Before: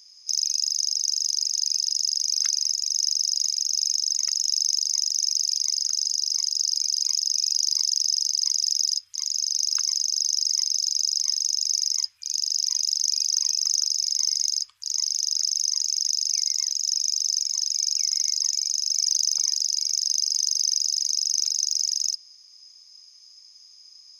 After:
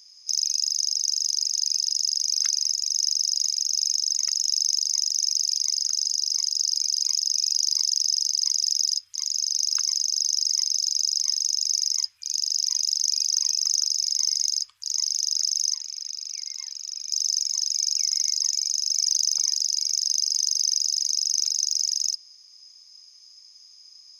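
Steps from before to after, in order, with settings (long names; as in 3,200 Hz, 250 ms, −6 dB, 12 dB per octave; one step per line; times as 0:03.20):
0:15.75–0:17.11: three-way crossover with the lows and the highs turned down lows −17 dB, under 200 Hz, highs −12 dB, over 3,400 Hz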